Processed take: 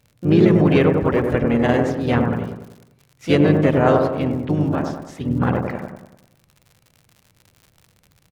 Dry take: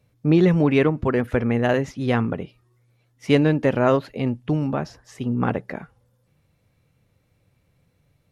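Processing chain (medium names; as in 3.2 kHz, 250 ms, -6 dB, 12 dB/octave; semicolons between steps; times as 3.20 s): harmony voices -7 st -9 dB, +3 st -7 dB; feedback echo behind a low-pass 98 ms, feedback 47%, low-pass 1.4 kHz, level -3 dB; crackle 100 per s -37 dBFS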